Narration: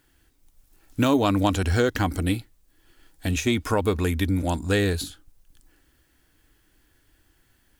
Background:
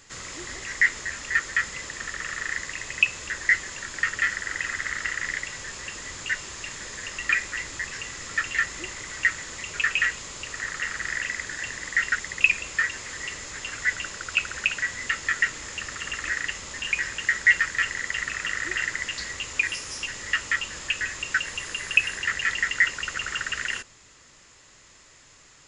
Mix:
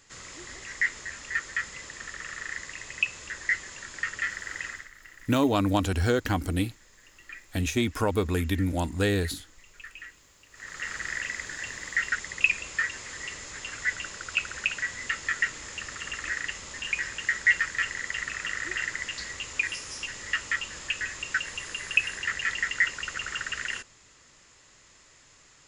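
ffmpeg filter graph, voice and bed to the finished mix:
-filter_complex "[0:a]adelay=4300,volume=0.708[s0];[1:a]volume=3.76,afade=t=out:st=4.65:d=0.24:silence=0.177828,afade=t=in:st=10.51:d=0.41:silence=0.133352[s1];[s0][s1]amix=inputs=2:normalize=0"

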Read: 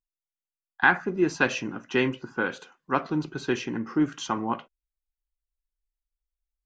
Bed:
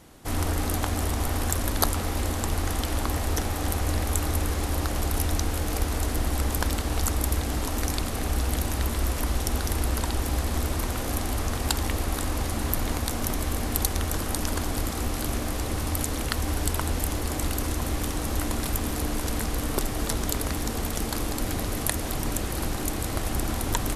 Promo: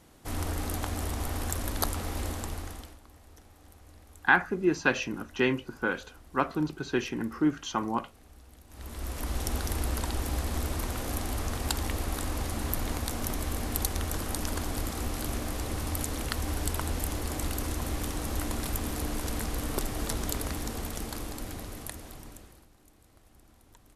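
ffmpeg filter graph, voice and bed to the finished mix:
-filter_complex "[0:a]adelay=3450,volume=0.794[s0];[1:a]volume=7.08,afade=t=out:st=2.27:d=0.71:silence=0.0841395,afade=t=in:st=8.68:d=0.77:silence=0.0707946,afade=t=out:st=20.33:d=2.33:silence=0.0446684[s1];[s0][s1]amix=inputs=2:normalize=0"

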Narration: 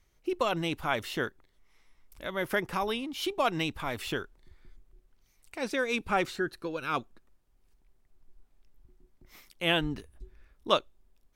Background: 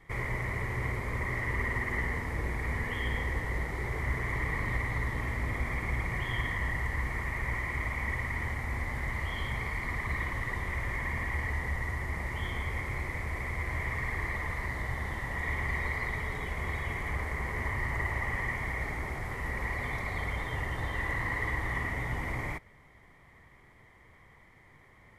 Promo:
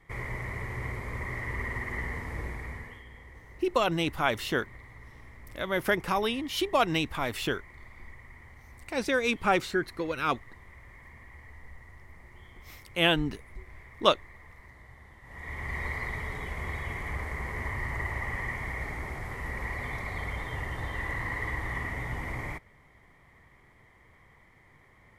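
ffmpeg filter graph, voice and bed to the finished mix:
-filter_complex "[0:a]adelay=3350,volume=1.41[s0];[1:a]volume=5.01,afade=t=out:st=2.4:d=0.64:silence=0.177828,afade=t=in:st=15.22:d=0.63:silence=0.149624[s1];[s0][s1]amix=inputs=2:normalize=0"

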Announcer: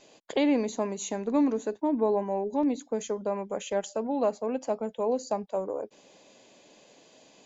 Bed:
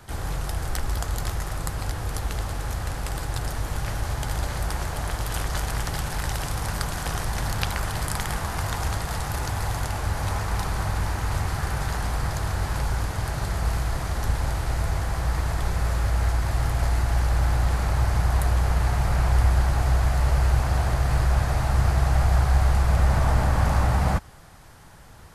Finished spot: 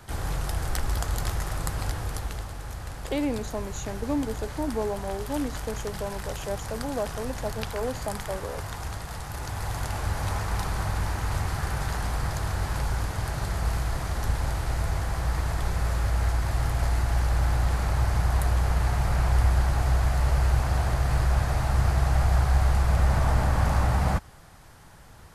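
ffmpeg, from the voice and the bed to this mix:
-filter_complex "[0:a]adelay=2750,volume=0.668[s0];[1:a]volume=1.78,afade=t=out:st=1.86:d=0.64:silence=0.446684,afade=t=in:st=9.29:d=0.7:silence=0.530884[s1];[s0][s1]amix=inputs=2:normalize=0"

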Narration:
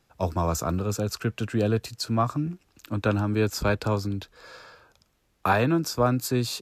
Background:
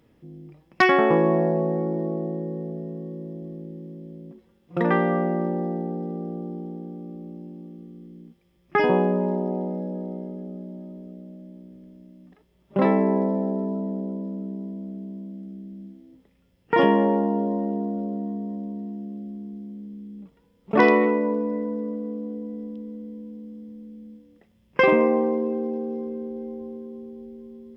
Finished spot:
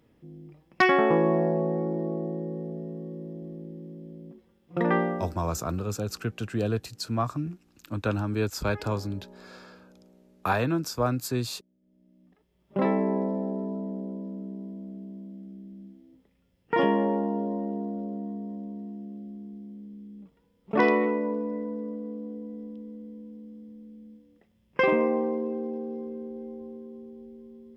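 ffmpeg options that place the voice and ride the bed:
-filter_complex "[0:a]adelay=5000,volume=0.668[s0];[1:a]volume=7.08,afade=t=out:st=4.97:d=0.36:silence=0.0794328,afade=t=in:st=11.8:d=0.91:silence=0.1[s1];[s0][s1]amix=inputs=2:normalize=0"

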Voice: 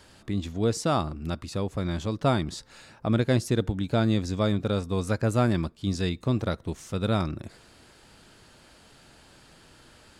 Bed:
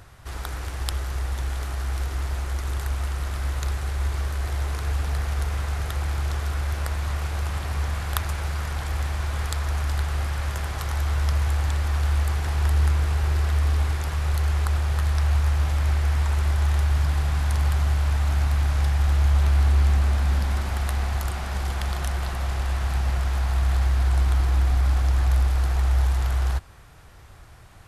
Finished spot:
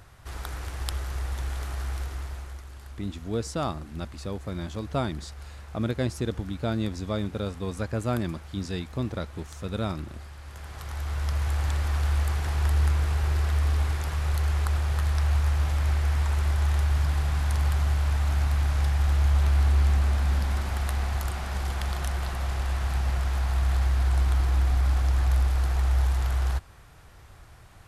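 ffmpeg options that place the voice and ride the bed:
-filter_complex "[0:a]adelay=2700,volume=0.596[s0];[1:a]volume=3.35,afade=t=out:st=1.82:d=0.89:silence=0.223872,afade=t=in:st=10.44:d=1.26:silence=0.199526[s1];[s0][s1]amix=inputs=2:normalize=0"

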